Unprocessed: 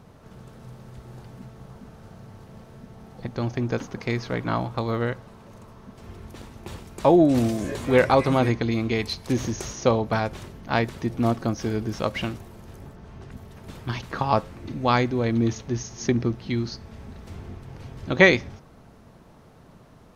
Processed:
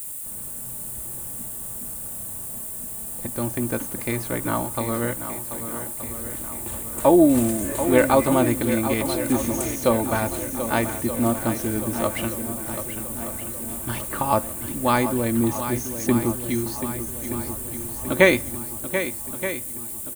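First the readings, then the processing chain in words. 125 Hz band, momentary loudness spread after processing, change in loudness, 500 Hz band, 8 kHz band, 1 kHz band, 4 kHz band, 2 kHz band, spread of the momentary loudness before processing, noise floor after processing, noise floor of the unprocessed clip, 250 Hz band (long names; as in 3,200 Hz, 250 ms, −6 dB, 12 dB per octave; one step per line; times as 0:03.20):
−2.5 dB, 12 LU, 0.0 dB, +1.5 dB, +14.0 dB, +1.5 dB, −1.5 dB, 0.0 dB, 24 LU, −34 dBFS, −51 dBFS, +2.5 dB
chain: downward expander −44 dBFS
comb filter 3.4 ms, depth 43%
background noise blue −45 dBFS
high shelf with overshoot 6,900 Hz +9.5 dB, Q 3
on a send: feedback echo with a long and a short gap by turns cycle 1,225 ms, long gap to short 1.5 to 1, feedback 49%, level −10 dB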